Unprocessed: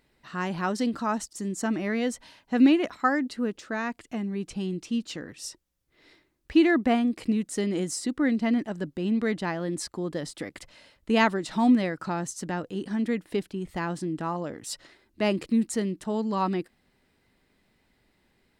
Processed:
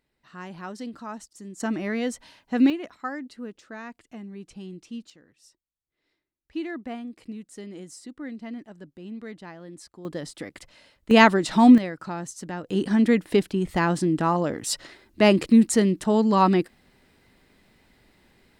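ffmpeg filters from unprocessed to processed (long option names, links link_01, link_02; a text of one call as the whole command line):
ffmpeg -i in.wav -af "asetnsamples=nb_out_samples=441:pad=0,asendcmd='1.6 volume volume 0dB;2.7 volume volume -8.5dB;5.1 volume volume -18.5dB;6.53 volume volume -12dB;10.05 volume volume -1dB;11.11 volume volume 7dB;11.78 volume volume -2.5dB;12.69 volume volume 8dB',volume=-9dB" out.wav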